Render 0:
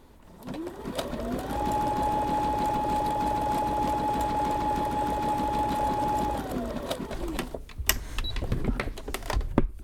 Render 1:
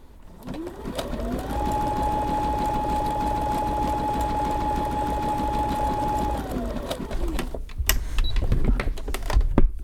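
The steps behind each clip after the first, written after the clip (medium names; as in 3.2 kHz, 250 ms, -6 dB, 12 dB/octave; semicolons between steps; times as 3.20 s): bass shelf 73 Hz +10 dB; trim +1.5 dB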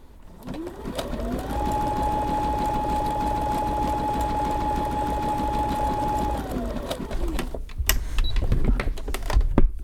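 no audible change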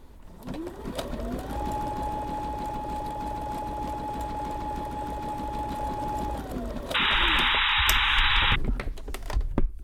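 gain riding within 5 dB 2 s; painted sound noise, 6.94–8.56 s, 800–3900 Hz -17 dBFS; trim -6.5 dB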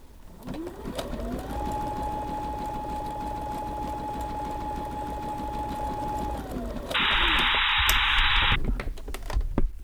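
word length cut 10-bit, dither none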